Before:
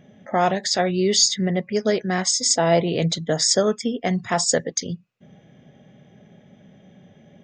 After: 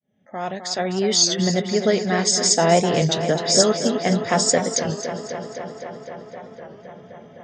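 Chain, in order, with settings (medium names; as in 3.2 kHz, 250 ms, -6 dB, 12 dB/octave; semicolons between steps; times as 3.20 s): fade-in on the opening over 1.43 s; 3.36–3.82 s: phase dispersion highs, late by 108 ms, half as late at 2.6 kHz; tape echo 257 ms, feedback 86%, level -8.5 dB, low-pass 5 kHz; warped record 33 1/3 rpm, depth 100 cents; trim +1.5 dB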